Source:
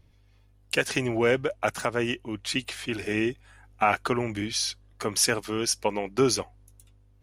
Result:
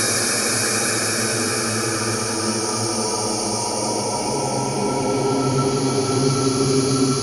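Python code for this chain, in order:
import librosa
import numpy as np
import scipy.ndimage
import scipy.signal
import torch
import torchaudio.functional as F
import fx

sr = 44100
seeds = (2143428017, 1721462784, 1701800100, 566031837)

y = fx.spec_quant(x, sr, step_db=30)
y = fx.paulstretch(y, sr, seeds[0], factor=6.2, window_s=1.0, from_s=5.2)
y = F.gain(torch.from_numpy(y), 6.5).numpy()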